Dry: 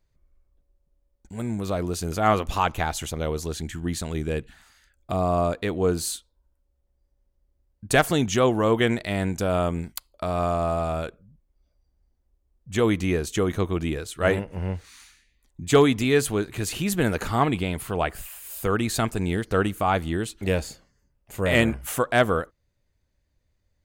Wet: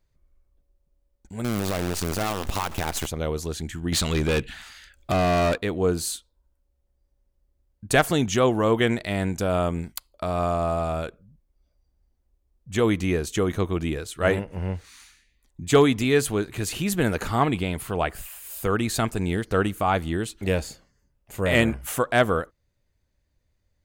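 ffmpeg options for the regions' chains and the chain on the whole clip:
-filter_complex "[0:a]asettb=1/sr,asplit=3[s0][s1][s2];[s0]atrim=end=1.444[s3];[s1]atrim=start=1.44:end=3.07,asetpts=PTS-STARTPTS,afade=t=in:d=0.004:c=qsin,afade=t=out:st=1.626:d=0.004:c=qsin,aeval=exprs='val(0)+0.5*0.0335*sgn(val(0))':c=same,acompressor=threshold=0.0794:ratio=16:attack=3.2:release=140:knee=1:detection=peak,acrusher=bits=5:dc=4:mix=0:aa=0.000001[s4];[s2]atrim=start=3.066[s5];[s3][s4]acrossfade=d=0.004:c1=hsin:c2=qsin[s6];[s6][s5]acrossfade=d=0.004:c1=qsin:c2=hsin,asettb=1/sr,asplit=3[s7][s8][s9];[s7]atrim=end=3.924[s10];[s8]atrim=start=3.92:end=5.58,asetpts=PTS-STARTPTS,afade=t=in:d=0.004:c=qsin,afade=t=out:st=1.656:d=0.004:c=qsin,equalizer=f=3000:t=o:w=1.8:g=8.5,acontrast=90,volume=8.91,asoftclip=hard,volume=0.112[s11];[s9]atrim=start=5.576[s12];[s10][s11]acrossfade=d=0.004:c1=hsin:c2=qsin[s13];[s13][s12]acrossfade=d=0.004:c1=qsin:c2=hsin"

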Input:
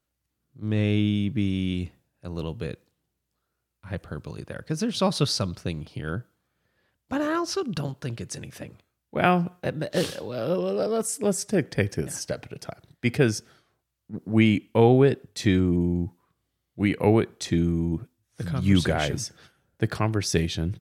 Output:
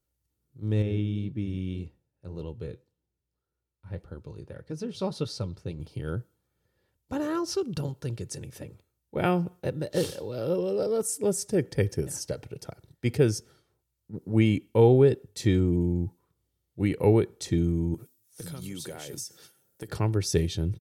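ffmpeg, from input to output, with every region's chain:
-filter_complex "[0:a]asettb=1/sr,asplit=3[s0][s1][s2];[s0]atrim=end=0.824[s3];[s1]atrim=start=0.82:end=5.8,asetpts=PTS-STARTPTS,afade=t=in:d=0.004:c=qsin,afade=t=out:st=4.976:d=0.004:c=qsin,highshelf=f=6100:g=-11.5,flanger=delay=3.4:depth=8.2:regen=-62:speed=1.8:shape=sinusoidal[s4];[s2]atrim=start=5.796[s5];[s3][s4]acrossfade=d=0.004:c1=hsin:c2=qsin[s6];[s6][s5]acrossfade=d=0.004:c1=qsin:c2=hsin,asettb=1/sr,asplit=3[s7][s8][s9];[s7]atrim=end=17.944[s10];[s8]atrim=start=17.94:end=19.89,asetpts=PTS-STARTPTS,afade=t=in:d=0.004:c=qsin,afade=t=out:st=1.946:d=0.004:c=qsin,highpass=180,aemphasis=mode=production:type=75kf,acompressor=threshold=0.0251:ratio=6:attack=3.2:release=140:knee=1:detection=peak[s11];[s9]atrim=start=19.886[s12];[s10][s11]acrossfade=d=0.004:c1=hsin:c2=qsin[s13];[s13][s12]acrossfade=d=0.004:c1=qsin:c2=hsin,equalizer=f=1800:w=0.42:g=-9,aecho=1:1:2.2:0.39"

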